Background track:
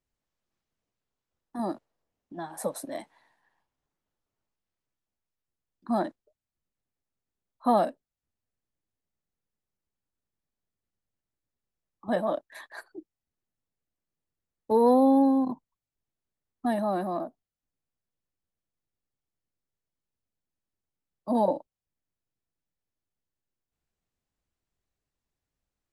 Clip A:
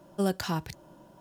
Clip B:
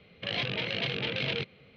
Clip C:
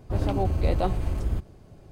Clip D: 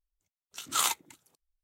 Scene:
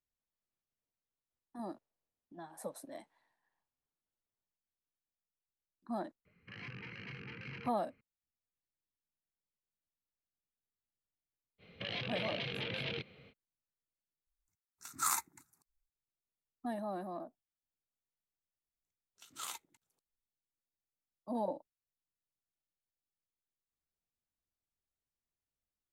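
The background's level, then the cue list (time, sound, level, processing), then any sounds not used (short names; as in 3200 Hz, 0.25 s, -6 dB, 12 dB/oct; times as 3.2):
background track -12 dB
6.25 add B -11 dB + fixed phaser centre 1500 Hz, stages 4
11.58 add B -2.5 dB, fades 0.05 s + limiter -26.5 dBFS
14.27 replace with D -3.5 dB + fixed phaser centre 1300 Hz, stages 4
18.64 add D -16.5 dB + crackling interface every 0.74 s, samples 2048, zero, from 0.39
not used: A, C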